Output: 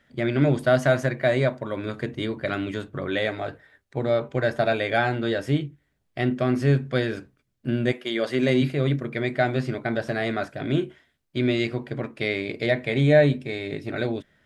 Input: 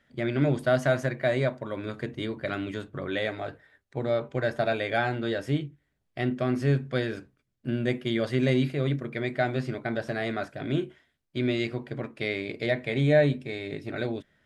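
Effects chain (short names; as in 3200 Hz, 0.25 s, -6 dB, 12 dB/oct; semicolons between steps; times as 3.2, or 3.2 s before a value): 7.91–8.61 HPF 570 Hz -> 130 Hz 12 dB/oct; gain +4 dB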